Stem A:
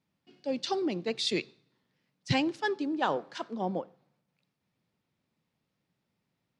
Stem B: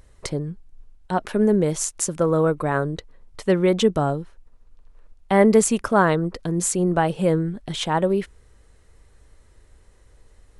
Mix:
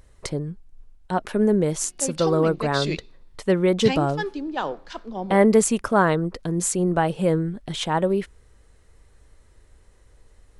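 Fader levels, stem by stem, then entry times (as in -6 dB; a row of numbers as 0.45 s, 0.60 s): +1.5 dB, -1.0 dB; 1.55 s, 0.00 s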